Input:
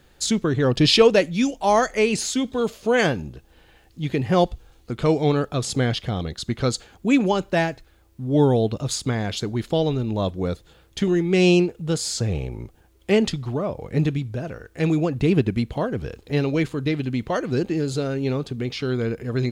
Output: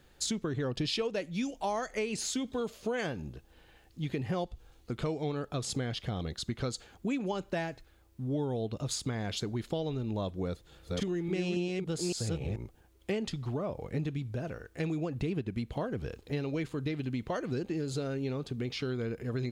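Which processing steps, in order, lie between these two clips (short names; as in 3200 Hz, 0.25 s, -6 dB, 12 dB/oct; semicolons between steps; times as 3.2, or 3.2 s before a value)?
10.44–12.56 reverse delay 0.281 s, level -1 dB; compressor 6:1, threshold -24 dBFS, peak gain reduction 14.5 dB; gain -6 dB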